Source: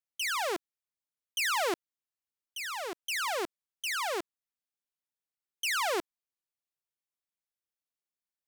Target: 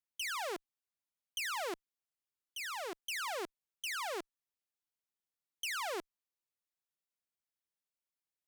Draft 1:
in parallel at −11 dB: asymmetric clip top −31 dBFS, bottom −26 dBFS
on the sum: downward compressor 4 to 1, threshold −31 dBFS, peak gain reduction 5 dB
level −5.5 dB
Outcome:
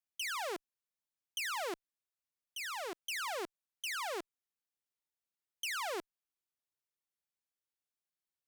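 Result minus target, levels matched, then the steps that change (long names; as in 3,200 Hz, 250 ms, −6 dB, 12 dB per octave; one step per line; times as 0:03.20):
asymmetric clip: distortion −6 dB
change: asymmetric clip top −39 dBFS, bottom −26 dBFS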